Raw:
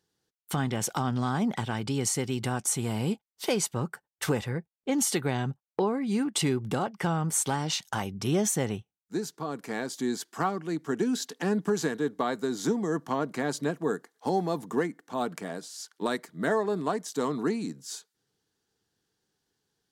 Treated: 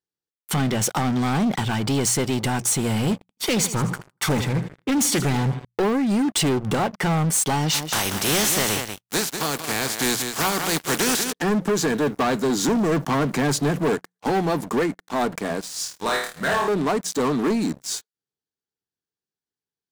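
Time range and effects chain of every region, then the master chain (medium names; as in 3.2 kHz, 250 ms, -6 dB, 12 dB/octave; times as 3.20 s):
3.13–5.65 s: comb 0.9 ms, depth 40% + feedback delay 80 ms, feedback 51%, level -15 dB + loudspeaker Doppler distortion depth 0.32 ms
7.73–11.31 s: spectral contrast reduction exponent 0.38 + delay 187 ms -11 dB
11.90–13.95 s: companding laws mixed up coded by mu + peaking EQ 140 Hz +5.5 dB 0.64 oct
15.74–16.68 s: peaking EQ 290 Hz -14 dB 1.7 oct + flutter echo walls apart 4.5 m, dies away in 0.51 s
whole clip: hum notches 60/120/180 Hz; waveshaping leveller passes 5; trim -7 dB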